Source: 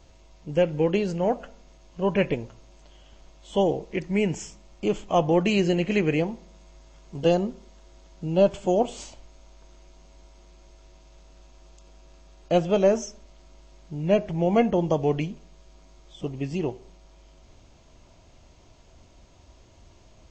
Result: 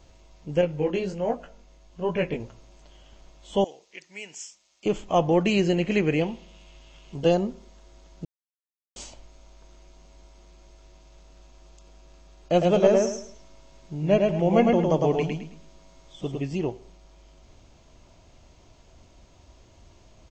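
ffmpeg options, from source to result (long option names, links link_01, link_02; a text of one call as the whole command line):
ffmpeg -i in.wav -filter_complex "[0:a]asettb=1/sr,asplit=3[link_01][link_02][link_03];[link_01]atrim=end=0.614[link_04];[link_02]atrim=start=0.61:end=2.4,asetpts=PTS-STARTPTS,afade=type=in:duration=0.004:curve=qsin,afade=type=out:start_time=1.786:duration=0.004:curve=qsin,flanger=delay=17:depth=4.9:speed=1.3[link_05];[link_03]atrim=start=2.396[link_06];[link_04][link_05]acrossfade=duration=0.004:curve1=hsin:curve2=qsin[link_07];[link_07][link_06]acrossfade=duration=0.004:curve1=qsin:curve2=hsin,asettb=1/sr,asplit=3[link_08][link_09][link_10];[link_08]atrim=end=3.644[link_11];[link_09]atrim=start=3.64:end=4.86,asetpts=PTS-STARTPTS,afade=type=in:duration=0.004:curve=qsin,afade=type=out:start_time=1.216:duration=0.004:curve=qsin,bandpass=frequency=6500:width_type=q:width=0.66[link_12];[link_10]atrim=start=4.856[link_13];[link_11][link_12]acrossfade=duration=0.004:curve1=hsin:curve2=qsin[link_14];[link_14][link_13]acrossfade=duration=0.004:curve1=qsin:curve2=hsin,asettb=1/sr,asplit=3[link_15][link_16][link_17];[link_15]atrim=end=6.214[link_18];[link_16]atrim=start=6.21:end=7.15,asetpts=PTS-STARTPTS,afade=type=in:duration=0.004:curve=qsin,afade=type=out:start_time=0.936:duration=0.004:curve=qsin,equalizer=frequency=2900:width=2.4:gain=13.5[link_19];[link_17]atrim=start=7.146[link_20];[link_18][link_19]acrossfade=duration=0.004:curve1=hsin:curve2=qsin[link_21];[link_21][link_20]acrossfade=duration=0.004:curve1=qsin:curve2=hsin,asplit=3[link_22][link_23][link_24];[link_22]afade=type=out:start_time=12.6:duration=0.02[link_25];[link_23]aecho=1:1:107|214|321|428:0.708|0.205|0.0595|0.0173,afade=type=in:start_time=12.6:duration=0.02,afade=type=out:start_time=16.4:duration=0.02[link_26];[link_24]afade=type=in:start_time=16.4:duration=0.02[link_27];[link_25][link_26][link_27]amix=inputs=3:normalize=0,asplit=3[link_28][link_29][link_30];[link_28]atrim=end=8.25,asetpts=PTS-STARTPTS,afade=type=out:start_time=8.246:duration=0.004:curve=hsin[link_31];[link_29]atrim=start=8.25:end=8.96,asetpts=PTS-STARTPTS,volume=0[link_32];[link_30]atrim=start=8.96,asetpts=PTS-STARTPTS,afade=type=in:duration=0.004:curve=hsin[link_33];[link_31][link_32][link_33]concat=n=3:v=0:a=1" out.wav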